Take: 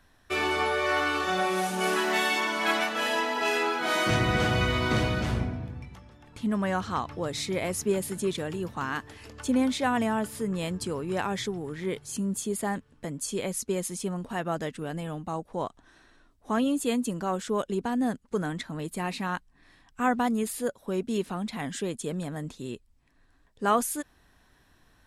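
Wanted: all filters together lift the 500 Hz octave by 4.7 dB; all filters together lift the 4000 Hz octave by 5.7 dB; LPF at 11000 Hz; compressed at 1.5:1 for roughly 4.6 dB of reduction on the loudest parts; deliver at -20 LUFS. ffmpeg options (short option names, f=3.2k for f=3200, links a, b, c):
-af "lowpass=11k,equalizer=f=500:t=o:g=6,equalizer=f=4k:t=o:g=7.5,acompressor=threshold=-30dB:ratio=1.5,volume=9.5dB"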